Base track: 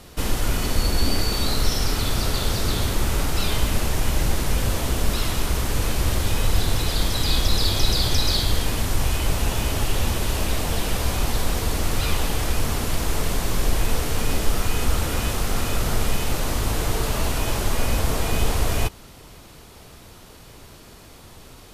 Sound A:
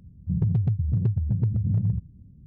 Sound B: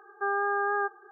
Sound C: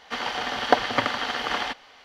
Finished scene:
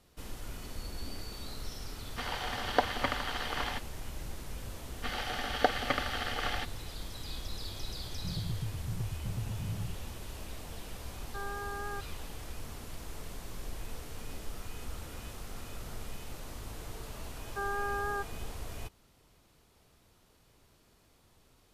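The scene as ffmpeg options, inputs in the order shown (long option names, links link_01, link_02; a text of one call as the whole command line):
ffmpeg -i bed.wav -i cue0.wav -i cue1.wav -i cue2.wav -filter_complex "[3:a]asplit=2[link_01][link_02];[2:a]asplit=2[link_03][link_04];[0:a]volume=-20dB[link_05];[link_02]asuperstop=centerf=990:order=4:qfactor=5.1[link_06];[link_01]atrim=end=2.04,asetpts=PTS-STARTPTS,volume=-8.5dB,afade=type=in:duration=0.004:curve=hsin,afade=type=out:start_time=2.036:duration=0.004:curve=hsin,adelay=2060[link_07];[link_06]atrim=end=2.04,asetpts=PTS-STARTPTS,volume=-7.5dB,afade=type=in:duration=0.004:curve=hsin,afade=type=out:start_time=2.036:duration=0.004:curve=hsin,adelay=4920[link_08];[1:a]atrim=end=2.46,asetpts=PTS-STARTPTS,volume=-14dB,afade=type=in:duration=0.004:curve=hsin,afade=type=out:start_time=2.456:duration=0.004:curve=hsin,adelay=7950[link_09];[link_03]atrim=end=1.11,asetpts=PTS-STARTPTS,volume=-12.5dB,afade=type=in:duration=0.004:curve=hsin,afade=type=out:start_time=1.106:duration=0.004:curve=hsin,adelay=11130[link_10];[link_04]atrim=end=1.11,asetpts=PTS-STARTPTS,volume=-7dB,afade=type=in:duration=0.004:curve=hsin,afade=type=out:start_time=1.106:duration=0.004:curve=hsin,adelay=17350[link_11];[link_05][link_07][link_08][link_09][link_10][link_11]amix=inputs=6:normalize=0" out.wav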